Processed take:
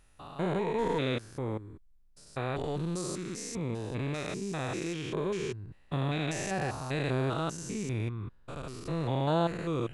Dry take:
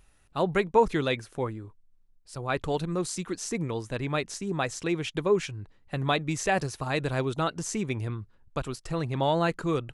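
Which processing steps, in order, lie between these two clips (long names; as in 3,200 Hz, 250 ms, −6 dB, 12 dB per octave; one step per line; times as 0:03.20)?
spectrum averaged block by block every 200 ms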